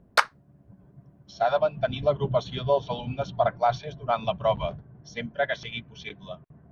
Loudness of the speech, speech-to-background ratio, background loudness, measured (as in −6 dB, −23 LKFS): −27.5 LKFS, −2.5 dB, −25.0 LKFS